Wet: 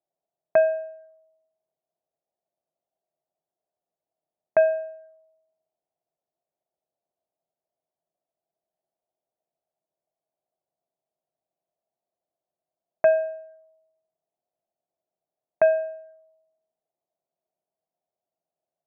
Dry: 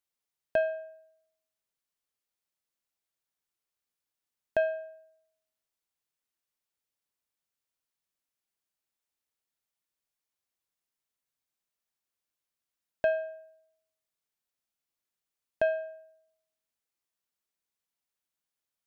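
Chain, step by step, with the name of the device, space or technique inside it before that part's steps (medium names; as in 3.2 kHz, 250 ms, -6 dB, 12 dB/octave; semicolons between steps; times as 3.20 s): envelope filter bass rig (touch-sensitive low-pass 690–2600 Hz up, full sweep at -37 dBFS; cabinet simulation 84–2000 Hz, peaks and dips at 160 Hz +8 dB, 360 Hz +6 dB, 640 Hz +8 dB)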